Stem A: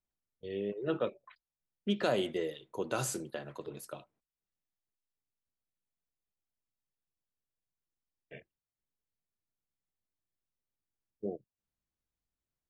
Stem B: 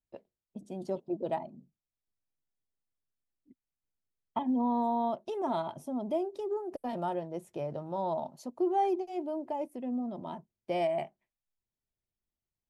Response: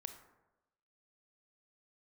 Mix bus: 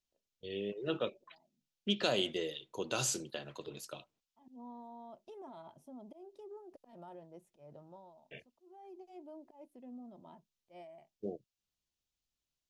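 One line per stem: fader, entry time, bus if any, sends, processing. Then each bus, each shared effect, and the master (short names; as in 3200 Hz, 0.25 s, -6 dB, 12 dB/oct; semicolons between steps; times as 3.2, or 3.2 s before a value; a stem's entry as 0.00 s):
-3.0 dB, 0.00 s, no send, band shelf 4300 Hz +9.5 dB
-15.0 dB, 0.00 s, no send, auto swell 0.159 s; limiter -27.5 dBFS, peak gain reduction 7.5 dB; auto duck -16 dB, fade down 0.45 s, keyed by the first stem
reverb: off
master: dry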